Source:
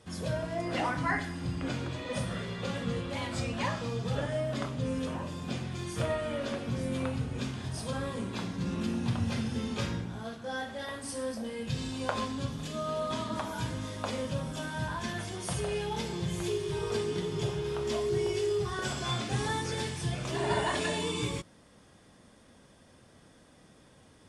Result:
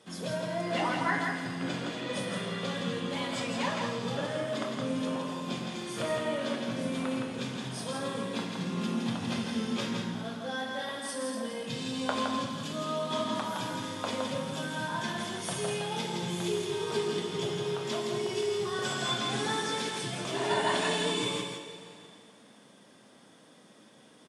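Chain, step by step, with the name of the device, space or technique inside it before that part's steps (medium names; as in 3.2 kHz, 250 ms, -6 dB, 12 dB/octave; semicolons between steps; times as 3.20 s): PA in a hall (high-pass 160 Hz 24 dB/octave; peaking EQ 3.4 kHz +4 dB 0.31 oct; delay 165 ms -4.5 dB; reverberation RT60 2.6 s, pre-delay 4 ms, DRR 7 dB)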